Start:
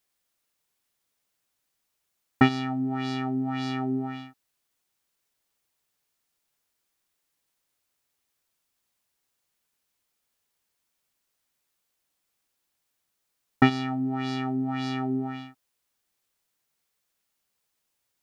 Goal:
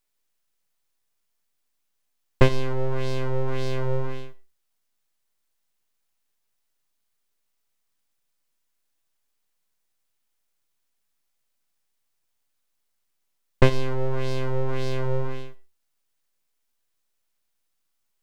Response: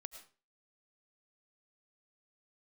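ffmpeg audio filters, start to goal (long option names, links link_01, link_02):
-filter_complex "[0:a]bass=frequency=250:gain=12,treble=frequency=4000:gain=3,aeval=exprs='abs(val(0))':channel_layout=same,asplit=2[link_01][link_02];[1:a]atrim=start_sample=2205,asetrate=66150,aresample=44100[link_03];[link_02][link_03]afir=irnorm=-1:irlink=0,volume=2dB[link_04];[link_01][link_04]amix=inputs=2:normalize=0,volume=-4.5dB"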